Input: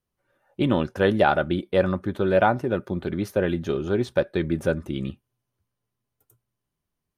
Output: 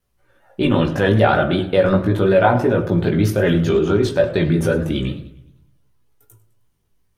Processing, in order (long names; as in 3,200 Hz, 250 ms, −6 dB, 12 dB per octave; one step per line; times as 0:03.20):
multi-voice chorus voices 6, 0.34 Hz, delay 18 ms, depth 1.7 ms
in parallel at 0 dB: compressor whose output falls as the input rises −28 dBFS, ratio −0.5
on the sum: pitch vibrato 5.3 Hz 54 cents
hum removal 45.7 Hz, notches 27
on a send at −9.5 dB: convolution reverb RT60 0.60 s, pre-delay 4 ms
on the sum: feedback echo with a swinging delay time 102 ms, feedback 48%, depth 177 cents, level −19 dB
level +5.5 dB